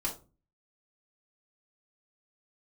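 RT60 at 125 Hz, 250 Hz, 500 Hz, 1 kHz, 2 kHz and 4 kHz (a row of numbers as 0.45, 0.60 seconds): 0.60, 0.50, 0.35, 0.30, 0.20, 0.20 seconds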